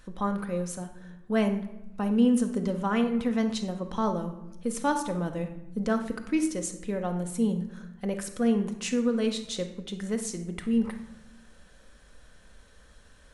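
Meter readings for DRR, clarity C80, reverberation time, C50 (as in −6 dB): 5.0 dB, 13.0 dB, 0.90 s, 9.0 dB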